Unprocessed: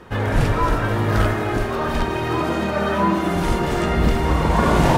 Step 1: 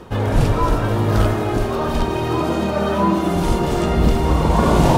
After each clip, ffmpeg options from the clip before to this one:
ffmpeg -i in.wav -af "equalizer=frequency=1800:width_type=o:width=1:gain=-8,areverse,acompressor=mode=upward:threshold=-20dB:ratio=2.5,areverse,volume=2.5dB" out.wav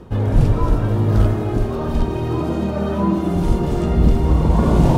ffmpeg -i in.wav -af "lowshelf=frequency=440:gain=11.5,volume=-8.5dB" out.wav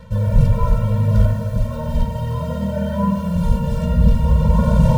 ffmpeg -i in.wav -af "acrusher=bits=6:mix=0:aa=0.5,afftfilt=real='re*eq(mod(floor(b*sr/1024/220),2),0)':imag='im*eq(mod(floor(b*sr/1024/220),2),0)':win_size=1024:overlap=0.75,volume=1dB" out.wav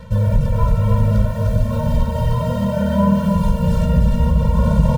ffmpeg -i in.wav -af "acompressor=threshold=-15dB:ratio=6,aecho=1:1:304:0.596,volume=3.5dB" out.wav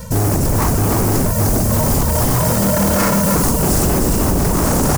ffmpeg -i in.wav -af "aeval=exprs='0.158*(abs(mod(val(0)/0.158+3,4)-2)-1)':channel_layout=same,aexciter=amount=10.4:drive=2.4:freq=5100,volume=5.5dB" out.wav

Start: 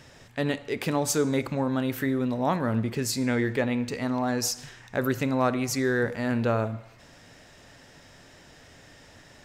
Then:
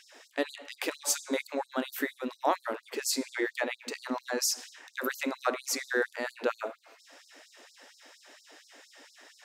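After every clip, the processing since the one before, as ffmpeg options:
ffmpeg -i in.wav -af "bandreject=frequency=60:width_type=h:width=6,bandreject=frequency=120:width_type=h:width=6,bandreject=frequency=180:width_type=h:width=6,bandreject=frequency=240:width_type=h:width=6,afftfilt=real='re*gte(b*sr/1024,230*pow(4100/230,0.5+0.5*sin(2*PI*4.3*pts/sr)))':imag='im*gte(b*sr/1024,230*pow(4100/230,0.5+0.5*sin(2*PI*4.3*pts/sr)))':win_size=1024:overlap=0.75" out.wav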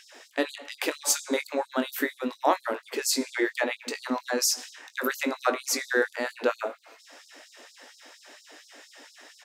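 ffmpeg -i in.wav -filter_complex "[0:a]asplit=2[link_01][link_02];[link_02]adelay=20,volume=-10.5dB[link_03];[link_01][link_03]amix=inputs=2:normalize=0,volume=4dB" out.wav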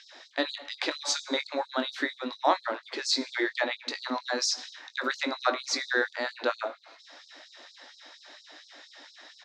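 ffmpeg -i in.wav -af "highpass=frequency=270:width=0.5412,highpass=frequency=270:width=1.3066,equalizer=frequency=440:width_type=q:width=4:gain=-10,equalizer=frequency=2700:width_type=q:width=4:gain=-5,equalizer=frequency=3900:width_type=q:width=4:gain=8,lowpass=frequency=5600:width=0.5412,lowpass=frequency=5600:width=1.3066" out.wav

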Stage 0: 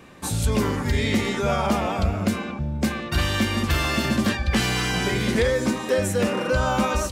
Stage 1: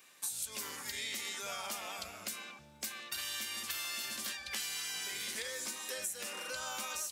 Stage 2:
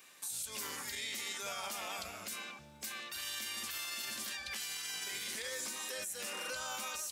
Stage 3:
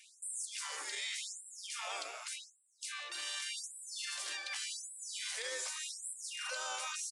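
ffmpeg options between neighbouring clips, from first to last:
ffmpeg -i in.wav -af "aderivative,acompressor=threshold=-36dB:ratio=5" out.wav
ffmpeg -i in.wav -af "alimiter=level_in=8.5dB:limit=-24dB:level=0:latency=1:release=32,volume=-8.5dB,volume=2dB" out.wav
ffmpeg -i in.wav -af "aresample=22050,aresample=44100,afftfilt=real='re*gte(b*sr/1024,280*pow(7600/280,0.5+0.5*sin(2*PI*0.86*pts/sr)))':imag='im*gte(b*sr/1024,280*pow(7600/280,0.5+0.5*sin(2*PI*0.86*pts/sr)))':win_size=1024:overlap=0.75,volume=1dB" out.wav

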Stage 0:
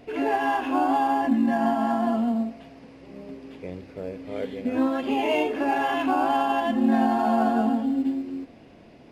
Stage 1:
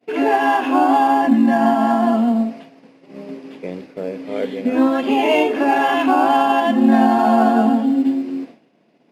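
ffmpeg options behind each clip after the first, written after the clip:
ffmpeg -i in.wav -af "highpass=frequency=160:width=0.5412,highpass=frequency=160:width=1.3066,agate=range=-33dB:threshold=-39dB:ratio=3:detection=peak,volume=8dB" out.wav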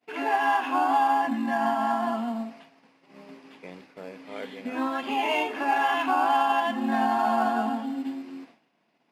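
ffmpeg -i in.wav -af "lowshelf=frequency=690:width_type=q:width=1.5:gain=-7.5,volume=-6.5dB" out.wav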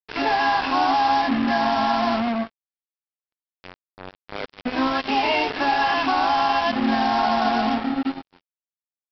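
ffmpeg -i in.wav -af "alimiter=limit=-18dB:level=0:latency=1:release=83,aresample=11025,acrusher=bits=4:mix=0:aa=0.5,aresample=44100,volume=6dB" out.wav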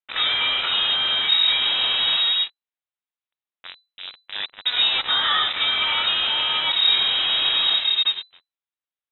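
ffmpeg -i in.wav -filter_complex "[0:a]acrossover=split=300|510|1700[link_01][link_02][link_03][link_04];[link_03]asoftclip=type=tanh:threshold=-30dB[link_05];[link_01][link_02][link_05][link_04]amix=inputs=4:normalize=0,lowpass=frequency=3400:width_type=q:width=0.5098,lowpass=frequency=3400:width_type=q:width=0.6013,lowpass=frequency=3400:width_type=q:width=0.9,lowpass=frequency=3400:width_type=q:width=2.563,afreqshift=-4000,volume=3.5dB" out.wav

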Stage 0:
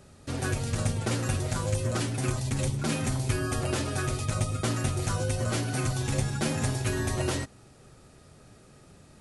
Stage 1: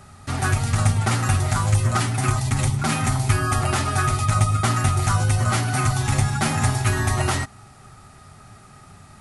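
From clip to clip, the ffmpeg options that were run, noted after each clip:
ffmpeg -i in.wav -af "equalizer=frequency=100:width_type=o:width=0.33:gain=6,equalizer=frequency=315:width_type=o:width=0.33:gain=-8,equalizer=frequency=500:width_type=o:width=0.33:gain=-12,equalizer=frequency=800:width_type=o:width=0.33:gain=8,equalizer=frequency=1250:width_type=o:width=0.33:gain=9,equalizer=frequency=2000:width_type=o:width=0.33:gain=5,equalizer=frequency=10000:width_type=o:width=0.33:gain=3,volume=6dB" out.wav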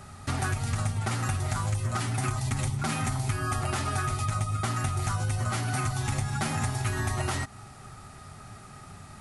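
ffmpeg -i in.wav -af "acompressor=threshold=-26dB:ratio=6" out.wav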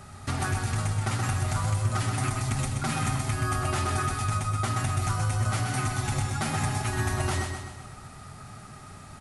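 ffmpeg -i in.wav -af "aecho=1:1:127|254|381|508|635|762:0.531|0.271|0.138|0.0704|0.0359|0.0183" out.wav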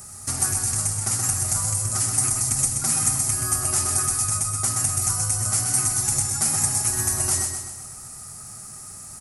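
ffmpeg -i in.wav -af "aexciter=amount=10.9:drive=4.6:freq=5200,volume=-3.5dB" out.wav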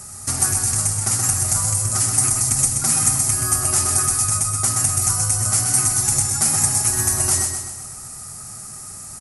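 ffmpeg -i in.wav -af "aresample=32000,aresample=44100,volume=4dB" out.wav

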